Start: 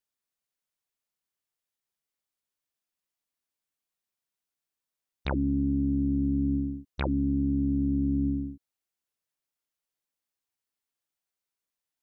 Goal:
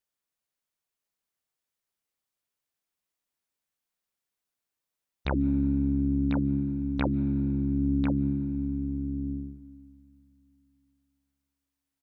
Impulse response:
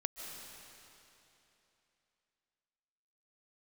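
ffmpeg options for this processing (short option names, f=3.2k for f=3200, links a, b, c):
-filter_complex "[0:a]aecho=1:1:1045:0.501,asplit=2[a][b];[1:a]atrim=start_sample=2205,lowpass=2.9k[c];[b][c]afir=irnorm=-1:irlink=0,volume=-14dB[d];[a][d]amix=inputs=2:normalize=0"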